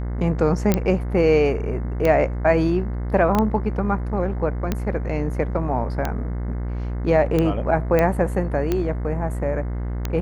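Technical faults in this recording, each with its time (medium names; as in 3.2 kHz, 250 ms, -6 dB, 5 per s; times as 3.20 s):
buzz 60 Hz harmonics 36 -26 dBFS
tick 45 rpm -9 dBFS
0.74 s: pop -6 dBFS
3.35 s: pop -9 dBFS
7.99 s: pop -8 dBFS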